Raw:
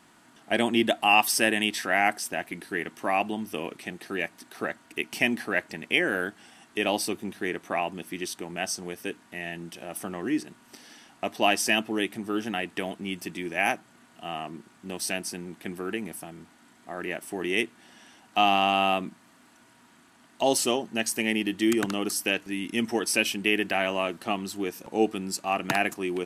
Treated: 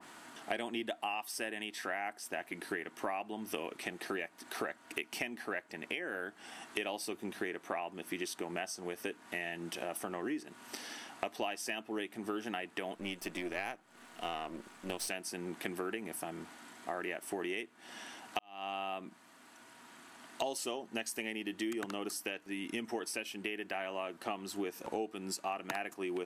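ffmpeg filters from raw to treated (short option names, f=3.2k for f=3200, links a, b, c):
-filter_complex "[0:a]asettb=1/sr,asplit=3[a][b][c];[a]atrim=end=12.954[d];[b]atrim=start=12.95:end=15.08,asetpts=PTS-STARTPTS,afade=t=in:d=0.004:c=qsin,afade=t=out:st=2.126:d=0.004:c=qsin,aeval=exprs='if(lt(val(0),0),0.447*val(0),val(0))':c=same[e];[c]atrim=start=15.076[f];[d][e]acrossfade=d=0.004:c1=hsin:c2=qsin[g];[g][f]acrossfade=d=0.004:c1=qsin:c2=hsin,asplit=2[h][i];[h]atrim=end=18.39,asetpts=PTS-STARTPTS,afade=t=out:st=18.386:d=0.004:c=hsin[j];[i]atrim=start=18.39,asetpts=PTS-STARTPTS,afade=t=in:d=2.05[k];[j][k]concat=n=2:v=0:a=1,bass=f=250:g=-10,treble=f=4k:g=-1,acompressor=threshold=-40dB:ratio=8,adynamicequalizer=threshold=0.00158:dfrequency=2000:dqfactor=0.7:tfrequency=2000:tqfactor=0.7:attack=5:release=100:ratio=0.375:range=2:mode=cutabove:tftype=highshelf,volume=5.5dB"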